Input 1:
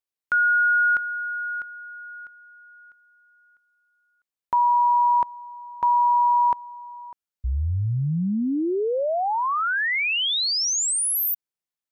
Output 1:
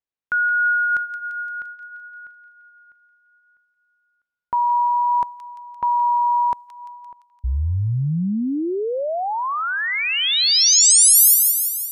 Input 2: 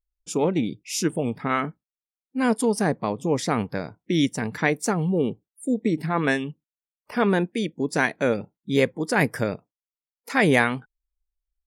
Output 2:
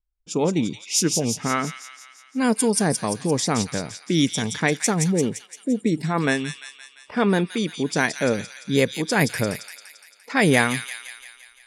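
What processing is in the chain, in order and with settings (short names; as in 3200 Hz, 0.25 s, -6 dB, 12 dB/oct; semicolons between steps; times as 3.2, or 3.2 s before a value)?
tone controls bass +3 dB, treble +10 dB; low-pass opened by the level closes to 2200 Hz, open at -15.5 dBFS; vibrato 0.61 Hz 7.1 cents; on a send: thin delay 0.172 s, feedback 59%, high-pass 2800 Hz, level -3.5 dB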